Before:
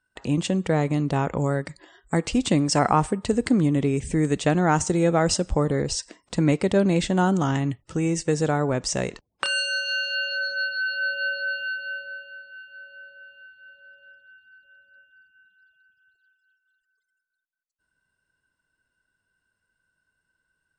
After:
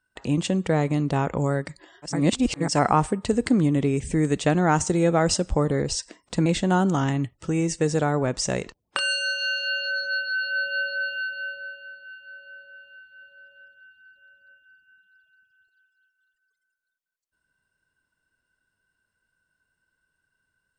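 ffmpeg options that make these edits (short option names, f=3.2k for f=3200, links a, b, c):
-filter_complex "[0:a]asplit=4[a][b][c][d];[a]atrim=end=2.26[e];[b]atrim=start=2.02:end=2.79,asetpts=PTS-STARTPTS,areverse[f];[c]atrim=start=2.55:end=6.462[g];[d]atrim=start=6.928[h];[e][f]acrossfade=d=0.24:c1=tri:c2=tri[i];[i][g]acrossfade=d=0.24:c1=tri:c2=tri[j];[j][h]acrossfade=d=0.004:c1=hsin:c2=hsin"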